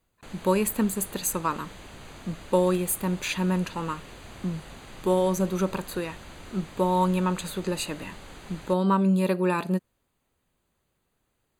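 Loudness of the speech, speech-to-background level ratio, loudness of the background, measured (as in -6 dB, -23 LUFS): -27.0 LUFS, 18.0 dB, -45.0 LUFS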